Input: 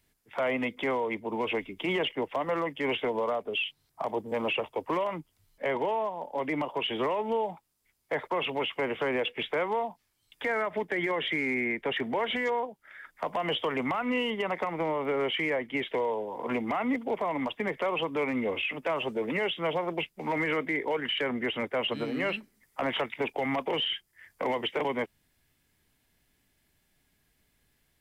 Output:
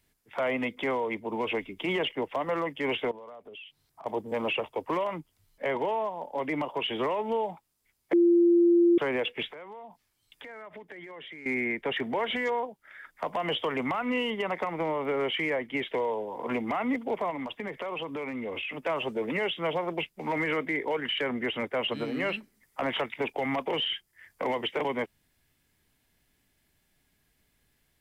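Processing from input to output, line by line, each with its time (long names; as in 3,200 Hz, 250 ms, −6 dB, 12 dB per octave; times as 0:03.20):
0:03.11–0:04.06: downward compressor 4 to 1, threshold −46 dBFS
0:08.13–0:08.98: beep over 344 Hz −17 dBFS
0:09.48–0:11.46: downward compressor 5 to 1, threshold −43 dBFS
0:17.30–0:18.82: downward compressor, threshold −31 dBFS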